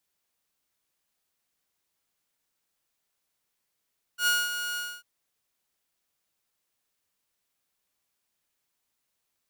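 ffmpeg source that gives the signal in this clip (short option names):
-f lavfi -i "aevalsrc='0.126*(2*mod(1440*t,1)-1)':d=0.846:s=44100,afade=t=in:d=0.089,afade=t=out:st=0.089:d=0.216:silence=0.335,afade=t=out:st=0.59:d=0.256"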